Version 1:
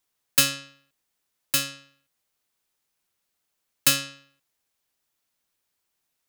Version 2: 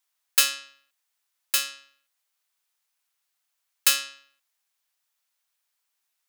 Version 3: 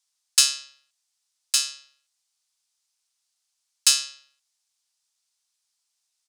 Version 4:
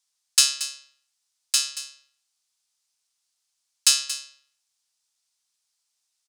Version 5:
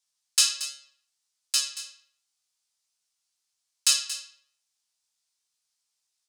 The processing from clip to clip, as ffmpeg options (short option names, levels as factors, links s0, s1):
-af "highpass=830"
-af "firequalizer=gain_entry='entry(140,0);entry(200,-26);entry(710,-5);entry(1700,-8);entry(4900,6);entry(9100,3);entry(15000,-17)':delay=0.05:min_phase=1,volume=1.19"
-af "aecho=1:1:229:0.224"
-af "flanger=delay=16:depth=4.3:speed=0.66"